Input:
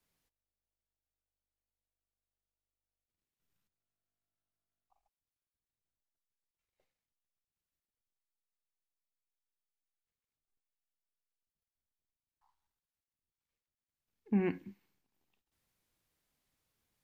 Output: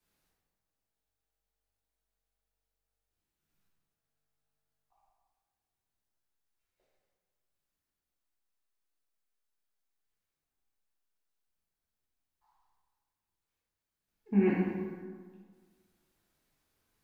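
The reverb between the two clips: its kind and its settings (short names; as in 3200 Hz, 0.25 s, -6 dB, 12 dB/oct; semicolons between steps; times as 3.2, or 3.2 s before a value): plate-style reverb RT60 1.7 s, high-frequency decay 0.55×, pre-delay 0 ms, DRR -7 dB; gain -2.5 dB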